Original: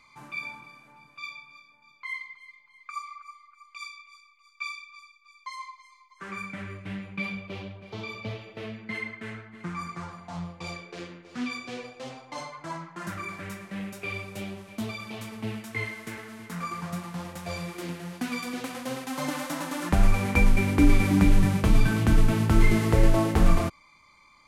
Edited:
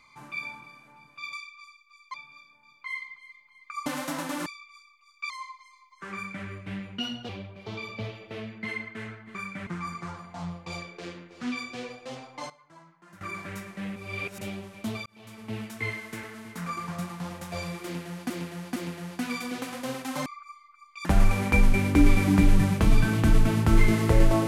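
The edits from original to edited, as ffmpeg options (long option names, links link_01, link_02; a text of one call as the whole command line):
ffmpeg -i in.wav -filter_complex "[0:a]asplit=19[link_01][link_02][link_03][link_04][link_05][link_06][link_07][link_08][link_09][link_10][link_11][link_12][link_13][link_14][link_15][link_16][link_17][link_18][link_19];[link_01]atrim=end=1.332[link_20];[link_02]atrim=start=4.678:end=5.492[link_21];[link_03]atrim=start=1.328:end=3.052[link_22];[link_04]atrim=start=19.278:end=19.882[link_23];[link_05]atrim=start=3.838:end=4.682[link_24];[link_06]atrim=start=5.488:end=7.174[link_25];[link_07]atrim=start=7.17:end=7.55,asetpts=PTS-STARTPTS,asetrate=54243,aresample=44100,atrim=end_sample=13624,asetpts=PTS-STARTPTS[link_26];[link_08]atrim=start=7.546:end=9.612[link_27];[link_09]atrim=start=6.328:end=6.652[link_28];[link_10]atrim=start=9.608:end=12.44,asetpts=PTS-STARTPTS,afade=type=out:start_time=2.682:duration=0.15:curve=log:silence=0.149624[link_29];[link_11]atrim=start=12.44:end=13.15,asetpts=PTS-STARTPTS,volume=-16.5dB[link_30];[link_12]atrim=start=13.15:end=13.902,asetpts=PTS-STARTPTS,afade=type=in:duration=0.15:curve=log:silence=0.149624[link_31];[link_13]atrim=start=13.898:end=14.352,asetpts=PTS-STARTPTS,areverse[link_32];[link_14]atrim=start=14.348:end=15,asetpts=PTS-STARTPTS,afade=type=out:start_time=0.648:duration=0.004:curve=hsin[link_33];[link_15]atrim=start=15:end=18.242,asetpts=PTS-STARTPTS,afade=type=in:duration=0.59[link_34];[link_16]atrim=start=17.778:end=18.242[link_35];[link_17]atrim=start=17.778:end=19.282[link_36];[link_18]atrim=start=3.048:end=3.842[link_37];[link_19]atrim=start=19.878[link_38];[link_20][link_21]acrossfade=duration=0.004:curve1=hsin:curve2=hsin[link_39];[link_39][link_22]acrossfade=duration=0.004:curve1=hsin:curve2=hsin[link_40];[link_40][link_23]acrossfade=duration=0.004:curve1=hsin:curve2=hsin[link_41];[link_41][link_24]acrossfade=duration=0.004:curve1=hsin:curve2=hsin[link_42];[link_42][link_25]acrossfade=duration=0.004:curve1=hsin:curve2=hsin[link_43];[link_43][link_26]acrossfade=duration=0.004:curve1=hsin:curve2=hsin[link_44];[link_44][link_27]acrossfade=duration=0.004:curve1=hsin:curve2=hsin[link_45];[link_45][link_28]acrossfade=duration=0.004:curve1=hsin:curve2=hsin[link_46];[link_29][link_30][link_31]concat=n=3:v=0:a=1[link_47];[link_46][link_47]acrossfade=duration=0.004:curve1=hsin:curve2=hsin[link_48];[link_48][link_32]acrossfade=duration=0.004:curve1=hsin:curve2=hsin[link_49];[link_33][link_34]concat=n=2:v=0:a=1[link_50];[link_49][link_50]acrossfade=duration=0.004:curve1=hsin:curve2=hsin[link_51];[link_51][link_35]acrossfade=duration=0.004:curve1=hsin:curve2=hsin[link_52];[link_52][link_36]acrossfade=duration=0.004:curve1=hsin:curve2=hsin[link_53];[link_53][link_37]acrossfade=duration=0.004:curve1=hsin:curve2=hsin[link_54];[link_54][link_38]acrossfade=duration=0.004:curve1=hsin:curve2=hsin" out.wav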